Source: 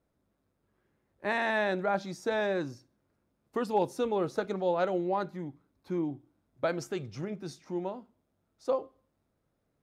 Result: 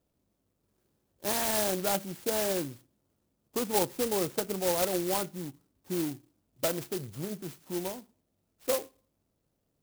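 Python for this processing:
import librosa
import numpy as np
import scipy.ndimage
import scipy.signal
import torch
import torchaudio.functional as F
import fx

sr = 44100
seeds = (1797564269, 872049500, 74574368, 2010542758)

y = fx.clock_jitter(x, sr, seeds[0], jitter_ms=0.15)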